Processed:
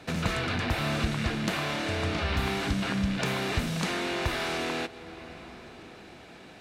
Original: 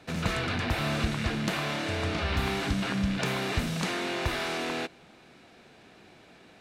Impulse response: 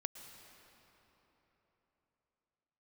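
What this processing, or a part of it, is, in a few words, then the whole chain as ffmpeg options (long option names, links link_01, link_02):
ducked reverb: -filter_complex "[0:a]asplit=3[link_01][link_02][link_03];[1:a]atrim=start_sample=2205[link_04];[link_02][link_04]afir=irnorm=-1:irlink=0[link_05];[link_03]apad=whole_len=291491[link_06];[link_05][link_06]sidechaincompress=threshold=-38dB:ratio=8:attack=41:release=731,volume=4.5dB[link_07];[link_01][link_07]amix=inputs=2:normalize=0,volume=-2dB"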